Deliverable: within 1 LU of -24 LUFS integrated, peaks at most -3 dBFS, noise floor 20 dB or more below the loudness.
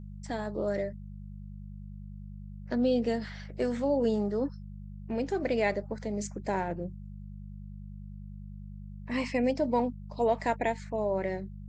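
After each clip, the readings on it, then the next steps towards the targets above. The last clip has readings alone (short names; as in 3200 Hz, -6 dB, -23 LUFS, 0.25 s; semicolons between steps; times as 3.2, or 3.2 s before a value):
hum 50 Hz; harmonics up to 200 Hz; hum level -40 dBFS; loudness -31.0 LUFS; peak -15.0 dBFS; loudness target -24.0 LUFS
-> de-hum 50 Hz, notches 4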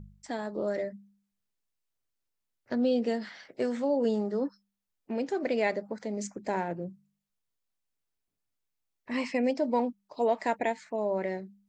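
hum none; loudness -31.0 LUFS; peak -15.0 dBFS; loudness target -24.0 LUFS
-> gain +7 dB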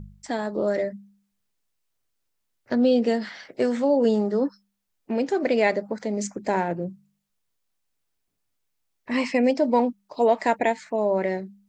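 loudness -24.0 LUFS; peak -8.0 dBFS; noise floor -76 dBFS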